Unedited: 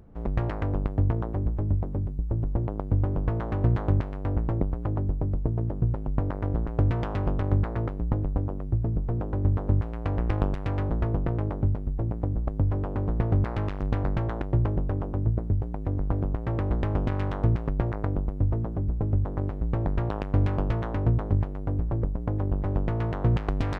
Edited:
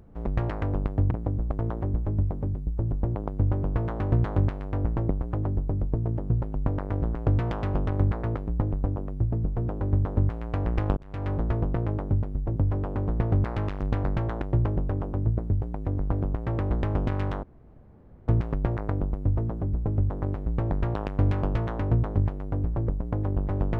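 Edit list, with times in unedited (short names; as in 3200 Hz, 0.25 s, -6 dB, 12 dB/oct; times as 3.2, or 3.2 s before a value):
10.49–10.85 fade in linear
12.08–12.56 move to 1.11
17.43 insert room tone 0.85 s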